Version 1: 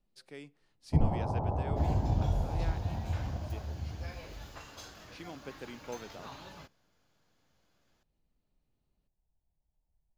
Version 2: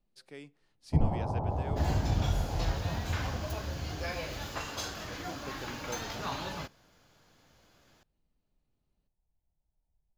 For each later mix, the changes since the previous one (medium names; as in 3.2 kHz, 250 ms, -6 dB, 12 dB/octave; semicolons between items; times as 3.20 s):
second sound +11.0 dB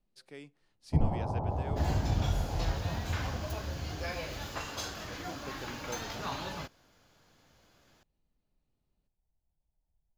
reverb: off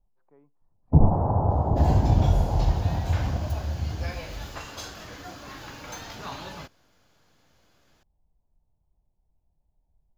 speech: add four-pole ladder low-pass 1.1 kHz, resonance 65%; first sound +10.0 dB